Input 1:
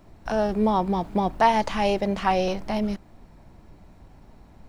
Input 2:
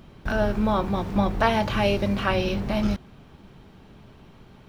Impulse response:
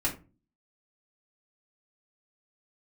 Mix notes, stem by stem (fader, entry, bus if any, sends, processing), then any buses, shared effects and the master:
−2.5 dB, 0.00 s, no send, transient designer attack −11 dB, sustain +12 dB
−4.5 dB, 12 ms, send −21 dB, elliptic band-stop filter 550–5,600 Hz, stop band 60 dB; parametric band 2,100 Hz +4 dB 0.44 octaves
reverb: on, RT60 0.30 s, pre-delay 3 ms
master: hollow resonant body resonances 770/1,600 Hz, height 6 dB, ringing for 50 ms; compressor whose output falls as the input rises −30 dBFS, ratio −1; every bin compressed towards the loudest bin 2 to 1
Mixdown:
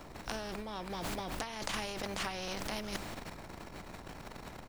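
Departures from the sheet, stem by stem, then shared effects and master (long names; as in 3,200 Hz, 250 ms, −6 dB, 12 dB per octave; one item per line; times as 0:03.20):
stem 2 −4.5 dB → −15.0 dB
master: missing hollow resonant body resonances 770/1,600 Hz, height 6 dB, ringing for 50 ms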